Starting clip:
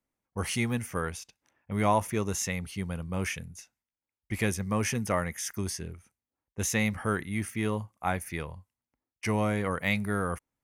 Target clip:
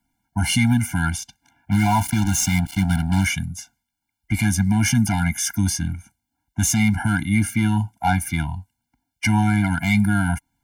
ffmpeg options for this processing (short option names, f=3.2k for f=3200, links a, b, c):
-filter_complex "[0:a]asplit=3[a][b][c];[a]afade=t=out:st=1.71:d=0.02[d];[b]acrusher=bits=5:mix=0:aa=0.5,afade=t=in:st=1.71:d=0.02,afade=t=out:st=3.24:d=0.02[e];[c]afade=t=in:st=3.24:d=0.02[f];[d][e][f]amix=inputs=3:normalize=0,acrossover=split=220[g][h];[h]asoftclip=type=tanh:threshold=-23.5dB[i];[g][i]amix=inputs=2:normalize=0,alimiter=level_in=22.5dB:limit=-1dB:release=50:level=0:latency=1,afftfilt=real='re*eq(mod(floor(b*sr/1024/340),2),0)':imag='im*eq(mod(floor(b*sr/1024/340),2),0)':win_size=1024:overlap=0.75,volume=-7.5dB"